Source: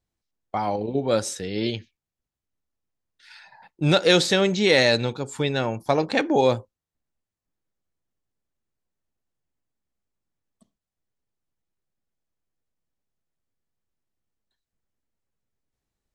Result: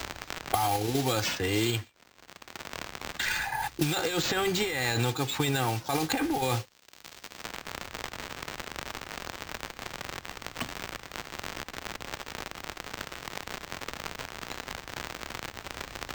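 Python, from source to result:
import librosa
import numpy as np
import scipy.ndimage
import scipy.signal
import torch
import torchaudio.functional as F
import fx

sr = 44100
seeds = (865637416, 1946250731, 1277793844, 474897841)

y = scipy.signal.sosfilt(scipy.signal.butter(2, 46.0, 'highpass', fs=sr, output='sos'), x)
y = fx.peak_eq(y, sr, hz=430.0, db=-12.0, octaves=0.78)
y = y + 0.88 * np.pad(y, (int(2.5 * sr / 1000.0), 0))[:len(y)]
y = fx.over_compress(y, sr, threshold_db=-27.0, ratio=-1.0)
y = fx.dmg_crackle(y, sr, seeds[0], per_s=200.0, level_db=-47.0)
y = fx.mod_noise(y, sr, seeds[1], snr_db=15)
y = np.repeat(y[::4], 4)[:len(y)]
y = fx.band_squash(y, sr, depth_pct=100)
y = y * 10.0 ** (2.5 / 20.0)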